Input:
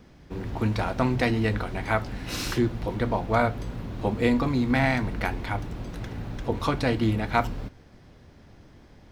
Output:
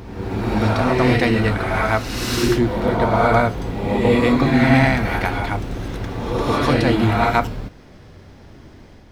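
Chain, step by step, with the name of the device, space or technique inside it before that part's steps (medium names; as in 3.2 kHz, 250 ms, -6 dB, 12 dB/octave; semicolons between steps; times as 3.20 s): reverse reverb (reverse; reverberation RT60 1.2 s, pre-delay 79 ms, DRR -1.5 dB; reverse); trim +5 dB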